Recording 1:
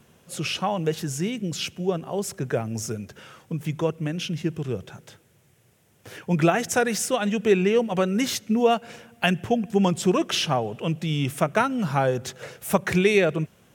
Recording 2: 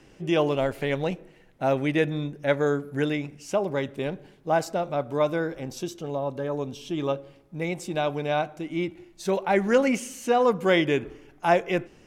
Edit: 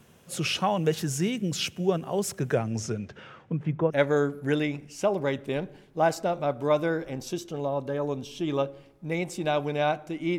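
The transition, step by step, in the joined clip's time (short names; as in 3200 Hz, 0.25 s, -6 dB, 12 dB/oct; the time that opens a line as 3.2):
recording 1
2.54–3.94 LPF 8900 Hz -> 1100 Hz
3.9 switch to recording 2 from 2.4 s, crossfade 0.08 s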